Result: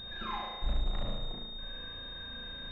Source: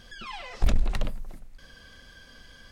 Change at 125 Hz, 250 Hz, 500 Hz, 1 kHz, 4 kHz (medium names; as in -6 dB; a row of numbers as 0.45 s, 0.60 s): -7.5 dB, -5.5 dB, -3.5 dB, +1.0 dB, +6.0 dB